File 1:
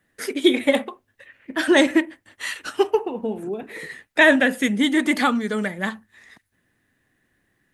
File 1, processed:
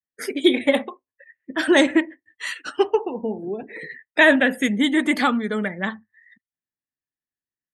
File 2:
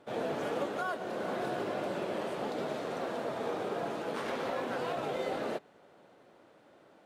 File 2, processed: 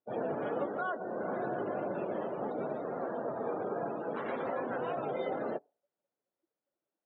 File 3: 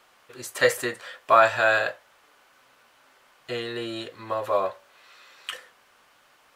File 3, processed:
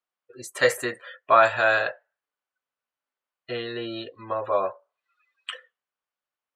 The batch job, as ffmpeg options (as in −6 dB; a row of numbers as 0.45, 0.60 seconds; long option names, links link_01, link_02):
-af "afftdn=noise_reduction=34:noise_floor=-41"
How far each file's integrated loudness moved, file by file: 0.0, −0.5, 0.0 LU